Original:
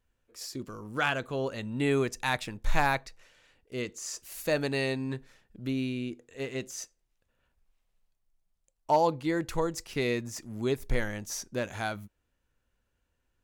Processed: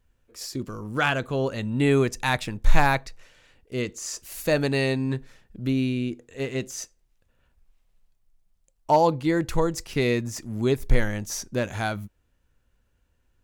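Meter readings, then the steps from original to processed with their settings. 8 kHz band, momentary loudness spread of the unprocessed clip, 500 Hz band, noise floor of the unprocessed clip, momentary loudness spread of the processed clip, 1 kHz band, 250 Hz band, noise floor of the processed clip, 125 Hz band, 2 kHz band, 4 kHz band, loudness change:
+4.5 dB, 12 LU, +5.5 dB, -78 dBFS, 12 LU, +5.0 dB, +7.0 dB, -69 dBFS, +9.0 dB, +4.5 dB, +4.5 dB, +6.0 dB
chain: low shelf 210 Hz +6 dB; gain +4.5 dB

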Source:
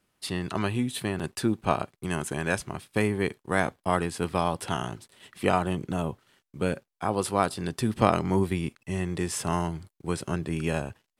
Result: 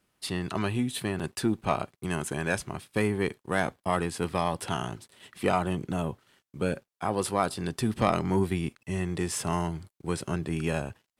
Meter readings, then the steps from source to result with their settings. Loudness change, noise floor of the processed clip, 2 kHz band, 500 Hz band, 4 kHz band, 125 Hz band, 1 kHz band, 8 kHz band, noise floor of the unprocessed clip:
-1.5 dB, -83 dBFS, -1.5 dB, -1.5 dB, -0.5 dB, -1.0 dB, -2.0 dB, -0.5 dB, -83 dBFS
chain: one diode to ground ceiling -9.5 dBFS

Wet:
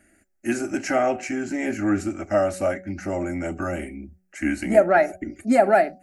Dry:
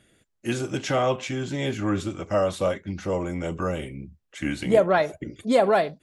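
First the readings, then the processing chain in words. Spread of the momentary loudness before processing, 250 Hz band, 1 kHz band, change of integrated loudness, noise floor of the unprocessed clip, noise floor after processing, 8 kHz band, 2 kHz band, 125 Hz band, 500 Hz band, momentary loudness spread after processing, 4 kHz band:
13 LU, +3.5 dB, +3.0 dB, +2.0 dB, -74 dBFS, -65 dBFS, +2.5 dB, +4.0 dB, -4.5 dB, +2.0 dB, 14 LU, -8.0 dB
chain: fixed phaser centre 700 Hz, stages 8; de-hum 186 Hz, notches 4; gain +5 dB

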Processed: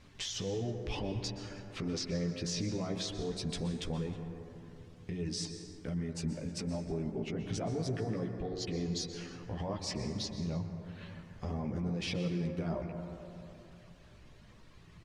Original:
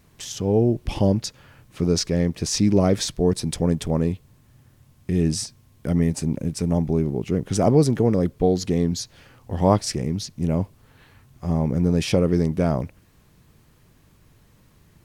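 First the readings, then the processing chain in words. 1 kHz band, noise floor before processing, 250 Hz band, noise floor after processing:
-15.5 dB, -57 dBFS, -15.0 dB, -56 dBFS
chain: LPF 3800 Hz 12 dB/oct; chorus voices 6, 0.17 Hz, delay 14 ms, depth 4.3 ms; reverb removal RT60 0.72 s; high shelf 2600 Hz +9.5 dB; compressor 2:1, threshold -38 dBFS, peak gain reduction 13 dB; limiter -30.5 dBFS, peak gain reduction 11 dB; de-hum 91.82 Hz, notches 24; on a send: echo 0.315 s -24 dB; on the sum: plate-style reverb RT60 3 s, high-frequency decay 0.3×, pre-delay 0.11 s, DRR 6 dB; gain +2 dB

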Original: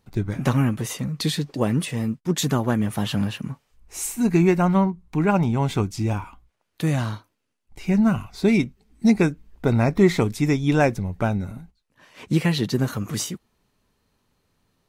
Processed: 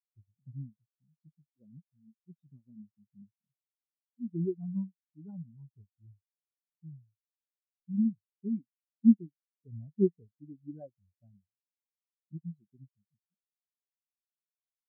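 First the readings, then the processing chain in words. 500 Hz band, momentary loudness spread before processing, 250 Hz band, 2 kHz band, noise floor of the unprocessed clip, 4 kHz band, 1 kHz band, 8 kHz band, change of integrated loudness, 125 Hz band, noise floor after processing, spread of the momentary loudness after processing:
-16.5 dB, 12 LU, -12.0 dB, under -40 dB, -74 dBFS, under -40 dB, under -40 dB, under -40 dB, -10.0 dB, -20.5 dB, under -85 dBFS, 24 LU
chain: spectral expander 4:1; gain -5.5 dB

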